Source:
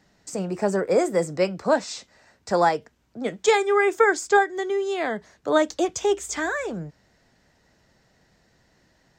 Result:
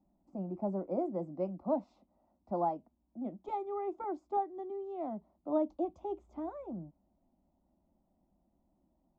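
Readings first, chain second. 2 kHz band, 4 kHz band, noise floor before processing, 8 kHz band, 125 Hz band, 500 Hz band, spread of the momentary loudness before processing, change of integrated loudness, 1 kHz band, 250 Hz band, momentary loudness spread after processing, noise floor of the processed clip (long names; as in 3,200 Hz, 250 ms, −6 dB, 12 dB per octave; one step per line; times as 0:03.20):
below −35 dB, below −35 dB, −64 dBFS, below −40 dB, −10.0 dB, −15.0 dB, 13 LU, −14.5 dB, −13.0 dB, −9.0 dB, 10 LU, −77 dBFS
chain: Bessel low-pass filter 570 Hz, order 2
phaser with its sweep stopped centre 450 Hz, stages 6
one half of a high-frequency compander decoder only
level −6 dB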